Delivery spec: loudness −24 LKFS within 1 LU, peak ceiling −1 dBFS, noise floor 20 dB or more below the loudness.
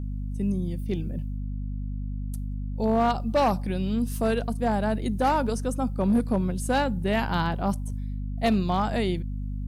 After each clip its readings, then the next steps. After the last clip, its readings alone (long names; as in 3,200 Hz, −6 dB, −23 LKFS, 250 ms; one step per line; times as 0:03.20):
share of clipped samples 1.0%; peaks flattened at −16.5 dBFS; mains hum 50 Hz; hum harmonics up to 250 Hz; level of the hum −29 dBFS; integrated loudness −27.0 LKFS; sample peak −16.5 dBFS; target loudness −24.0 LKFS
→ clipped peaks rebuilt −16.5 dBFS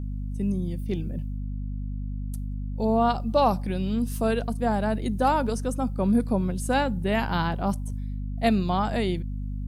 share of clipped samples 0.0%; mains hum 50 Hz; hum harmonics up to 250 Hz; level of the hum −28 dBFS
→ hum removal 50 Hz, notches 5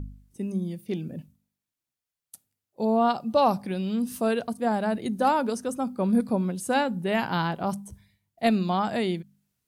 mains hum none found; integrated loudness −26.5 LKFS; sample peak −10.5 dBFS; target loudness −24.0 LKFS
→ level +2.5 dB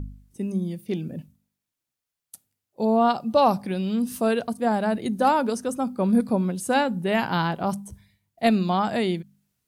integrated loudness −24.0 LKFS; sample peak −8.0 dBFS; background noise floor −86 dBFS